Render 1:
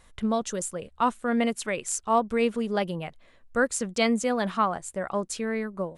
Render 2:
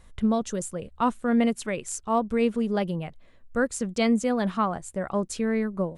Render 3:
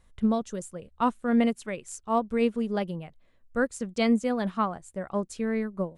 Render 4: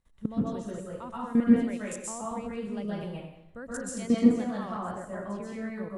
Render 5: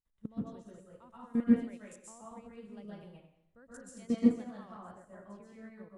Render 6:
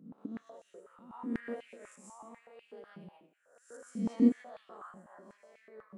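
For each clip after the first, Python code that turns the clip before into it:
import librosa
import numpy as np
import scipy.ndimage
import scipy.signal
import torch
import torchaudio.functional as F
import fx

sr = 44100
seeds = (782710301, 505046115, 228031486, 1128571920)

y1 = fx.low_shelf(x, sr, hz=360.0, db=9.0)
y1 = fx.rider(y1, sr, range_db=10, speed_s=2.0)
y1 = y1 * 10.0 ** (-3.5 / 20.0)
y2 = fx.upward_expand(y1, sr, threshold_db=-36.0, expansion=1.5)
y3 = fx.level_steps(y2, sr, step_db=20)
y3 = fx.rev_plate(y3, sr, seeds[0], rt60_s=0.81, hf_ratio=0.85, predelay_ms=115, drr_db=-6.5)
y4 = fx.upward_expand(y3, sr, threshold_db=-43.0, expansion=1.5)
y4 = y4 * 10.0 ** (-4.0 / 20.0)
y5 = fx.spec_swells(y4, sr, rise_s=0.63)
y5 = fx.filter_held_highpass(y5, sr, hz=8.1, low_hz=200.0, high_hz=2600.0)
y5 = y5 * 10.0 ** (-6.5 / 20.0)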